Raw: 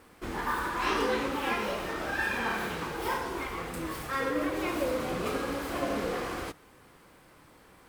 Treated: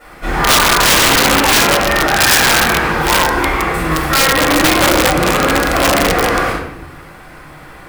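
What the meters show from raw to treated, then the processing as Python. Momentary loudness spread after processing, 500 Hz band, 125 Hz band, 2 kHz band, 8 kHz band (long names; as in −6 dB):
8 LU, +16.5 dB, +21.0 dB, +20.5 dB, +29.5 dB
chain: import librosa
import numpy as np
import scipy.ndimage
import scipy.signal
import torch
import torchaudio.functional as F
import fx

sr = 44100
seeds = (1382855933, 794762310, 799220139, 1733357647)

y = fx.peak_eq(x, sr, hz=1600.0, db=6.5, octaves=1.3)
y = fx.room_shoebox(y, sr, seeds[0], volume_m3=210.0, walls='mixed', distance_m=6.5)
y = (np.mod(10.0 ** (5.5 / 20.0) * y + 1.0, 2.0) - 1.0) / 10.0 ** (5.5 / 20.0)
y = F.gain(torch.from_numpy(y), 1.0).numpy()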